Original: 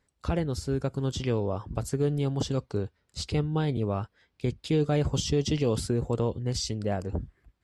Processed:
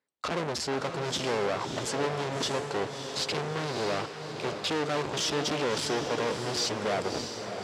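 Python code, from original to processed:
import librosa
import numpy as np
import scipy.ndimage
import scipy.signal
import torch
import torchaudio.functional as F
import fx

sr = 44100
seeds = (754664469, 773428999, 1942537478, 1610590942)

y = fx.leveller(x, sr, passes=5)
y = 10.0 ** (-25.5 / 20.0) * np.tanh(y / 10.0 ** (-25.5 / 20.0))
y = fx.bandpass_edges(y, sr, low_hz=280.0, high_hz=6100.0)
y = fx.echo_diffused(y, sr, ms=622, feedback_pct=47, wet_db=-7)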